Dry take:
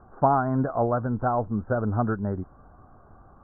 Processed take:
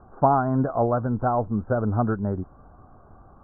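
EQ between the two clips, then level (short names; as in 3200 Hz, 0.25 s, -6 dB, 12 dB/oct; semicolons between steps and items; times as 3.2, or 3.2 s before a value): LPF 1500 Hz 12 dB/oct; +2.0 dB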